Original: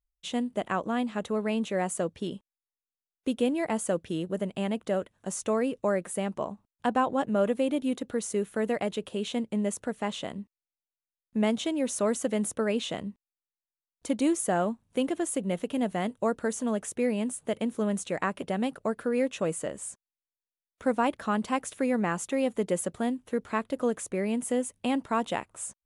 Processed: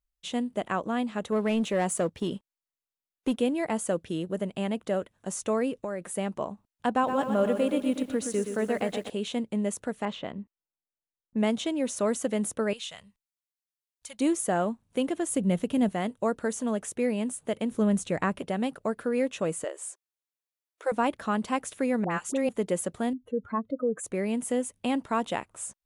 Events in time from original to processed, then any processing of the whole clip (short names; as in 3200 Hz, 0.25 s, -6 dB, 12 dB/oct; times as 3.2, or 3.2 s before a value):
1.32–3.39 sample leveller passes 1
5.78–6.18 compressor, threshold -29 dBFS
6.91–9.1 lo-fi delay 0.121 s, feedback 55%, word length 9-bit, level -7.5 dB
10.05–11.97 low-pass opened by the level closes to 860 Hz, open at -24 dBFS
12.73–14.2 passive tone stack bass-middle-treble 10-0-10
15.3–15.89 tone controls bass +9 dB, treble +2 dB
17.71–18.39 low shelf 180 Hz +12 dB
19.64–20.92 brick-wall FIR high-pass 310 Hz
22.04–22.49 dispersion highs, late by 66 ms, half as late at 900 Hz
23.13–24.04 spectral contrast raised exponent 2.4